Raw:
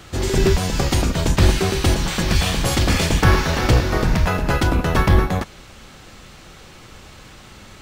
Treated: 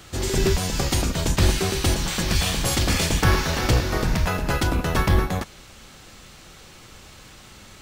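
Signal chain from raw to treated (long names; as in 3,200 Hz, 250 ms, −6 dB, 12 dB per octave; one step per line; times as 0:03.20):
high-shelf EQ 4,100 Hz +6.5 dB
level −4.5 dB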